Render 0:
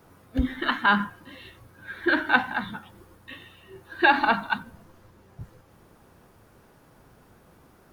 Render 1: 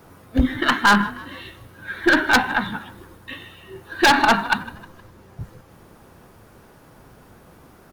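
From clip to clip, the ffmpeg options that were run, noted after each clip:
ffmpeg -i in.wav -filter_complex "[0:a]aeval=exprs='0.501*(cos(1*acos(clip(val(0)/0.501,-1,1)))-cos(1*PI/2))+0.0158*(cos(8*acos(clip(val(0)/0.501,-1,1)))-cos(8*PI/2))':channel_layout=same,asplit=4[link_01][link_02][link_03][link_04];[link_02]adelay=156,afreqshift=44,volume=-19.5dB[link_05];[link_03]adelay=312,afreqshift=88,volume=-26.4dB[link_06];[link_04]adelay=468,afreqshift=132,volume=-33.4dB[link_07];[link_01][link_05][link_06][link_07]amix=inputs=4:normalize=0,aeval=exprs='0.2*(abs(mod(val(0)/0.2+3,4)-2)-1)':channel_layout=same,volume=7dB" out.wav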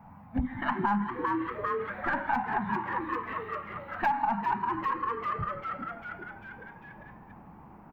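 ffmpeg -i in.wav -filter_complex "[0:a]firequalizer=gain_entry='entry(120,0);entry(210,8);entry(360,-21);entry(830,9);entry(1300,-6);entry(2300,-5);entry(3500,-22);entry(11000,-28);entry(15000,-13)':delay=0.05:min_phase=1,asplit=2[link_01][link_02];[link_02]asplit=7[link_03][link_04][link_05][link_06][link_07][link_08][link_09];[link_03]adelay=397,afreqshift=120,volume=-8dB[link_10];[link_04]adelay=794,afreqshift=240,volume=-13.2dB[link_11];[link_05]adelay=1191,afreqshift=360,volume=-18.4dB[link_12];[link_06]adelay=1588,afreqshift=480,volume=-23.6dB[link_13];[link_07]adelay=1985,afreqshift=600,volume=-28.8dB[link_14];[link_08]adelay=2382,afreqshift=720,volume=-34dB[link_15];[link_09]adelay=2779,afreqshift=840,volume=-39.2dB[link_16];[link_10][link_11][link_12][link_13][link_14][link_15][link_16]amix=inputs=7:normalize=0[link_17];[link_01][link_17]amix=inputs=2:normalize=0,acompressor=threshold=-23dB:ratio=4,volume=-4dB" out.wav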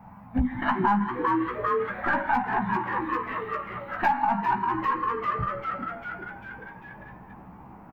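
ffmpeg -i in.wav -filter_complex "[0:a]asplit=2[link_01][link_02];[link_02]adelay=16,volume=-5dB[link_03];[link_01][link_03]amix=inputs=2:normalize=0,volume=3dB" out.wav

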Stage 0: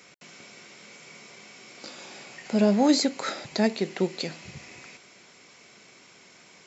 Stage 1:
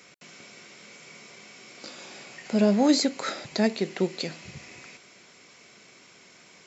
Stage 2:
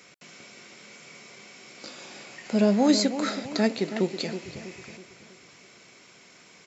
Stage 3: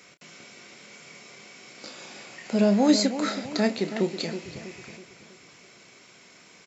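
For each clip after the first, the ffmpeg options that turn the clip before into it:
ffmpeg -i in.wav -af "equalizer=frequency=850:width=4.8:gain=-2.5" out.wav
ffmpeg -i in.wav -filter_complex "[0:a]asplit=2[link_01][link_02];[link_02]adelay=324,lowpass=frequency=2000:poles=1,volume=-10dB,asplit=2[link_03][link_04];[link_04]adelay=324,lowpass=frequency=2000:poles=1,volume=0.46,asplit=2[link_05][link_06];[link_06]adelay=324,lowpass=frequency=2000:poles=1,volume=0.46,asplit=2[link_07][link_08];[link_08]adelay=324,lowpass=frequency=2000:poles=1,volume=0.46,asplit=2[link_09][link_10];[link_10]adelay=324,lowpass=frequency=2000:poles=1,volume=0.46[link_11];[link_01][link_03][link_05][link_07][link_09][link_11]amix=inputs=6:normalize=0" out.wav
ffmpeg -i in.wav -filter_complex "[0:a]asplit=2[link_01][link_02];[link_02]adelay=30,volume=-10.5dB[link_03];[link_01][link_03]amix=inputs=2:normalize=0" out.wav

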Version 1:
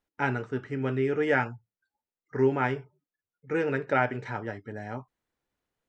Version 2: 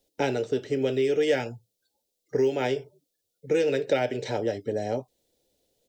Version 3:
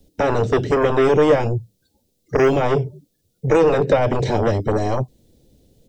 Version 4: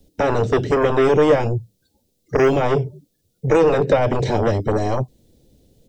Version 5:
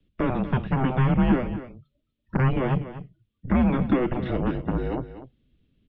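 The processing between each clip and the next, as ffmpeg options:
ffmpeg -i in.wav -filter_complex "[0:a]firequalizer=gain_entry='entry(160,0);entry(530,11);entry(1100,-16);entry(3600,9)':delay=0.05:min_phase=1,acrossover=split=310|1200[link_01][link_02][link_03];[link_01]acompressor=threshold=-42dB:ratio=4[link_04];[link_02]acompressor=threshold=-33dB:ratio=4[link_05];[link_03]acompressor=threshold=-36dB:ratio=4[link_06];[link_04][link_05][link_06]amix=inputs=3:normalize=0,volume=7dB" out.wav
ffmpeg -i in.wav -filter_complex "[0:a]acrossover=split=250|760|1200[link_01][link_02][link_03][link_04];[link_01]aeval=exprs='0.0531*sin(PI/2*6.31*val(0)/0.0531)':channel_layout=same[link_05];[link_04]alimiter=level_in=7dB:limit=-24dB:level=0:latency=1:release=283,volume=-7dB[link_06];[link_05][link_02][link_03][link_06]amix=inputs=4:normalize=0,volume=8dB" out.wav
ffmpeg -i in.wav -af anull out.wav
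ffmpeg -i in.wav -af "highpass=frequency=180:width_type=q:width=0.5412,highpass=frequency=180:width_type=q:width=1.307,lowpass=frequency=3500:width_type=q:width=0.5176,lowpass=frequency=3500:width_type=q:width=0.7071,lowpass=frequency=3500:width_type=q:width=1.932,afreqshift=-260,aecho=1:1:243:0.224,volume=-5.5dB" out.wav

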